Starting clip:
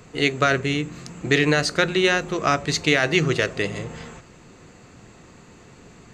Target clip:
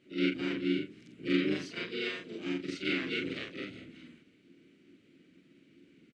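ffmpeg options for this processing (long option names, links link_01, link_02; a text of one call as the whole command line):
ffmpeg -i in.wav -filter_complex "[0:a]afftfilt=real='re':imag='-im':win_size=4096:overlap=0.75,asplit=3[link_01][link_02][link_03];[link_01]bandpass=frequency=270:width_type=q:width=8,volume=0dB[link_04];[link_02]bandpass=frequency=2290:width_type=q:width=8,volume=-6dB[link_05];[link_03]bandpass=frequency=3010:width_type=q:width=8,volume=-9dB[link_06];[link_04][link_05][link_06]amix=inputs=3:normalize=0,asplit=4[link_07][link_08][link_09][link_10];[link_08]asetrate=29433,aresample=44100,atempo=1.49831,volume=-8dB[link_11];[link_09]asetrate=55563,aresample=44100,atempo=0.793701,volume=-3dB[link_12];[link_10]asetrate=58866,aresample=44100,atempo=0.749154,volume=-14dB[link_13];[link_07][link_11][link_12][link_13]amix=inputs=4:normalize=0" out.wav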